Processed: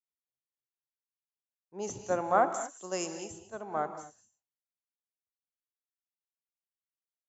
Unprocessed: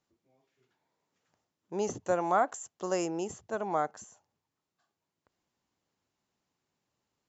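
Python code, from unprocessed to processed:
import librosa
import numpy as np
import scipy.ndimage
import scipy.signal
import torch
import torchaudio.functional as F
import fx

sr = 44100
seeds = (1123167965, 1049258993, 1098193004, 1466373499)

y = fx.rev_gated(x, sr, seeds[0], gate_ms=260, shape='rising', drr_db=5.5)
y = fx.band_widen(y, sr, depth_pct=100)
y = y * librosa.db_to_amplitude(-5.0)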